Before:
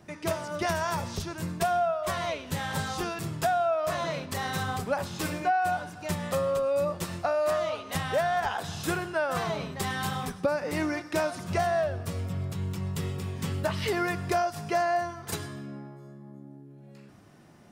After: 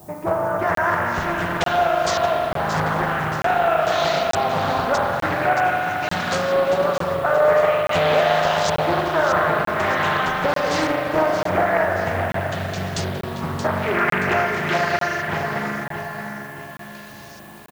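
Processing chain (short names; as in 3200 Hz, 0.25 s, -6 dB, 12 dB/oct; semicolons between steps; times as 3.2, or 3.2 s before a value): bell 260 Hz -3.5 dB 0.45 oct; in parallel at -1 dB: compressor, threshold -36 dBFS, peak gain reduction 14 dB; on the sum: bit-crush 9-bit; LFO low-pass saw up 0.46 Hz 810–5000 Hz; synth low-pass 6700 Hz, resonance Q 6; added noise violet -49 dBFS; on a send: feedback echo 0.626 s, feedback 44%, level -8.5 dB; on the sum: spring tank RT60 3.5 s, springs 38 ms, chirp 70 ms, DRR -0.5 dB; crackling interface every 0.89 s, samples 1024, zero, from 0.75; Doppler distortion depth 0.51 ms; gain +1.5 dB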